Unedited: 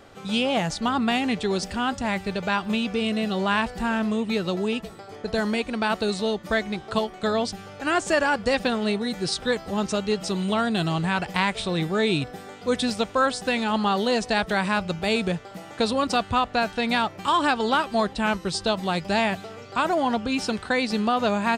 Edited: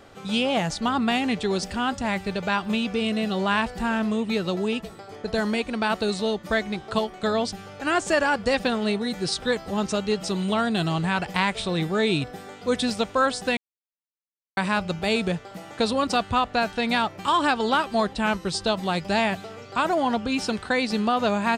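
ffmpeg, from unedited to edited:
-filter_complex "[0:a]asplit=3[a][b][c];[a]atrim=end=13.57,asetpts=PTS-STARTPTS,afade=t=out:st=13.566:d=0.004:c=hsin[d];[b]atrim=start=13.57:end=14.57,asetpts=PTS-STARTPTS,volume=0[e];[c]atrim=start=14.57,asetpts=PTS-STARTPTS,afade=t=in:d=0.004:c=hsin[f];[d][e][f]concat=n=3:v=0:a=1"

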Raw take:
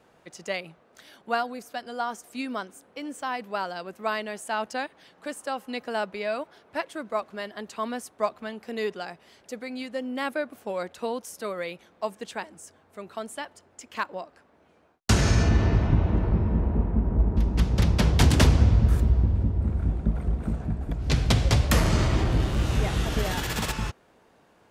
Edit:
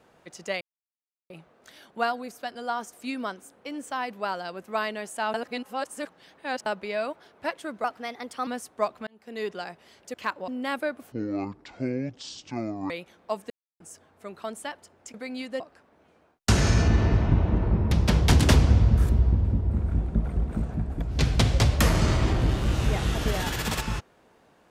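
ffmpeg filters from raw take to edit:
-filter_complex "[0:a]asplit=16[a][b][c][d][e][f][g][h][i][j][k][l][m][n][o][p];[a]atrim=end=0.61,asetpts=PTS-STARTPTS,afade=t=out:st=0.606:d=0.004:c=hsin,apad=pad_dur=0.69[q];[b]atrim=start=0.61:end=4.652,asetpts=PTS-STARTPTS,afade=t=in:d=0.004:c=hsin[r];[c]atrim=start=4.648:end=5.972,asetpts=PTS-STARTPTS,areverse[s];[d]atrim=start=5.968:end=7.154[t];[e]atrim=start=7.15:end=7.88,asetpts=PTS-STARTPTS,asetrate=51156,aresample=44100[u];[f]atrim=start=7.876:end=8.48,asetpts=PTS-STARTPTS,afade=t=out:st=0.6:d=0.004:c=hsin[v];[g]atrim=start=8.48:end=9.552,asetpts=PTS-STARTPTS,afade=t=in:d=0.49[w];[h]atrim=start=13.868:end=14.212[x];[i]atrim=start=10.008:end=10.654[y];[j]atrim=start=10.65:end=11.63,asetpts=PTS-STARTPTS,asetrate=24255,aresample=44100,atrim=end_sample=78578,asetpts=PTS-STARTPTS[z];[k]atrim=start=11.626:end=12.23,asetpts=PTS-STARTPTS,afade=t=out:st=0.6:d=0.004:c=hsin[aa];[l]atrim=start=12.23:end=12.53,asetpts=PTS-STARTPTS,volume=0[ab];[m]atrim=start=12.53:end=13.872,asetpts=PTS-STARTPTS,afade=t=in:d=0.004:c=hsin[ac];[n]atrim=start=9.548:end=10.012[ad];[o]atrim=start=14.208:end=16.522[ae];[p]atrim=start=17.818[af];[q][r]concat=n=2:v=0:a=1[ag];[ag][s]acrossfade=d=0.004:c1=hsin:c2=hsin[ah];[ah][t]acrossfade=d=0.004:c1=hsin:c2=hsin[ai];[ai][u]acrossfade=d=0.004:c1=hsin:c2=hsin[aj];[v][w]concat=n=2:v=0:a=1[ak];[aj][ak]acrossfade=d=0.004:c1=hsin:c2=hsin[al];[al][x]acrossfade=d=0.004:c1=hsin:c2=hsin[am];[am][y]acrossfade=d=0.004:c1=hsin:c2=hsin[an];[an][z]acrossfade=d=0.004:c1=hsin:c2=hsin[ao];[aa][ab][ac]concat=n=3:v=0:a=1[ap];[ao][ap]acrossfade=d=0.004:c1=hsin:c2=hsin[aq];[aq][ad]acrossfade=d=0.004:c1=hsin:c2=hsin[ar];[ar][ae]acrossfade=d=0.004:c1=hsin:c2=hsin[as];[as][af]acrossfade=d=0.004:c1=hsin:c2=hsin"

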